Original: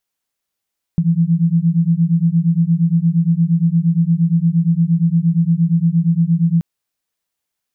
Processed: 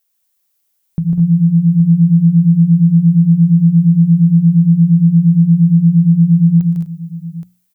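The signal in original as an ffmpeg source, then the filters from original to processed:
-f lavfi -i "aevalsrc='0.188*(sin(2*PI*163*t)+sin(2*PI*171.6*t))':d=5.63:s=44100"
-filter_complex "[0:a]aemphasis=mode=production:type=50kf,bandreject=f=60:t=h:w=6,bandreject=f=120:t=h:w=6,bandreject=f=180:t=h:w=6,asplit=2[s0][s1];[s1]aecho=0:1:116|151|198|214|251|821:0.178|0.562|0.282|0.447|0.106|0.299[s2];[s0][s2]amix=inputs=2:normalize=0"

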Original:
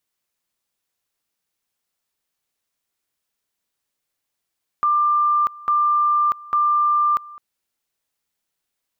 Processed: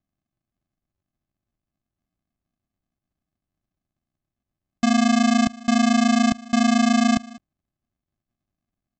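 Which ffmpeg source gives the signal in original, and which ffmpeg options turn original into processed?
-f lavfi -i "aevalsrc='pow(10,(-14.5-21.5*gte(mod(t,0.85),0.64))/20)*sin(2*PI*1190*t)':d=2.55:s=44100"
-af "bandreject=f=50:t=h:w=6,bandreject=f=100:t=h:w=6,bandreject=f=150:t=h:w=6,bandreject=f=200:t=h:w=6,aresample=16000,acrusher=samples=34:mix=1:aa=0.000001,aresample=44100"

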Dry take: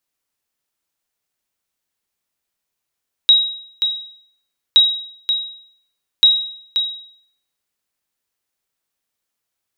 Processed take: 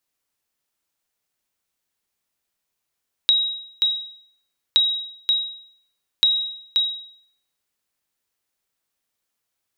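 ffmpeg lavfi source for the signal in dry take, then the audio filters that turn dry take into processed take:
-f lavfi -i "aevalsrc='0.668*(sin(2*PI*3820*mod(t,1.47))*exp(-6.91*mod(t,1.47)/0.62)+0.398*sin(2*PI*3820*max(mod(t,1.47)-0.53,0))*exp(-6.91*max(mod(t,1.47)-0.53,0)/0.62))':d=4.41:s=44100"
-af "acompressor=threshold=0.178:ratio=6"

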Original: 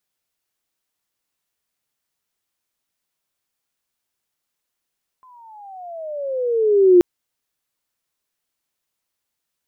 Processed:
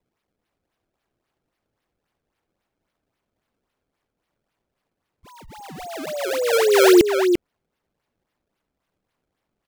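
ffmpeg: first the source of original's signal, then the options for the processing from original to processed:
-f lavfi -i "aevalsrc='pow(10,(-6+39*(t/1.78-1))/20)*sin(2*PI*1040*1.78/(-19*log(2)/12)*(exp(-19*log(2)/12*t/1.78)-1))':d=1.78:s=44100"
-filter_complex "[0:a]acrusher=samples=27:mix=1:aa=0.000001:lfo=1:lforange=43.2:lforate=3.7,asplit=2[s0][s1];[s1]adelay=344,volume=0.501,highshelf=f=4000:g=-7.74[s2];[s0][s2]amix=inputs=2:normalize=0"

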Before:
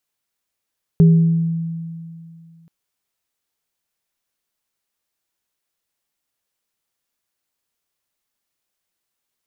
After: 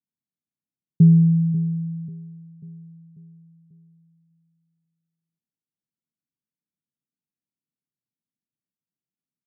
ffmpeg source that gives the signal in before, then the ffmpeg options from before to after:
-f lavfi -i "aevalsrc='0.501*pow(10,-3*t/2.46)*sin(2*PI*165*t)+0.119*pow(10,-3*t/0.77)*sin(2*PI*403*t)':d=1.68:s=44100"
-af "asuperpass=centerf=180:order=4:qfactor=1.2,aecho=1:1:541|1082|1623|2164|2705:0.2|0.0958|0.046|0.0221|0.0106"

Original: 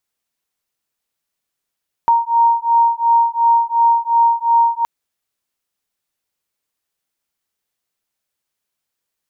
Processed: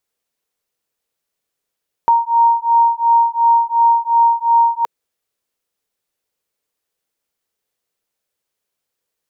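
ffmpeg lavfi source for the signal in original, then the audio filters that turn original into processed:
-f lavfi -i "aevalsrc='0.2*(sin(2*PI*929*t)+sin(2*PI*931.8*t))':d=2.77:s=44100"
-af "equalizer=f=470:w=2.1:g=7.5"

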